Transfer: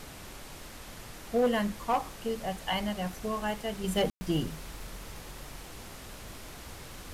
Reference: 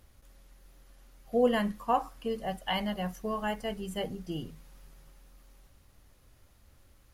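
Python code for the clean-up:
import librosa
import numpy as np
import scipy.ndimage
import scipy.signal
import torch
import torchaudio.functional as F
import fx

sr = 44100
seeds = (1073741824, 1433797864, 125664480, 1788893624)

y = fx.fix_declip(x, sr, threshold_db=-20.5)
y = fx.fix_ambience(y, sr, seeds[0], print_start_s=0.37, print_end_s=0.87, start_s=4.1, end_s=4.21)
y = fx.noise_reduce(y, sr, print_start_s=0.37, print_end_s=0.87, reduce_db=14.0)
y = fx.gain(y, sr, db=fx.steps((0.0, 0.0), (3.84, -7.5)))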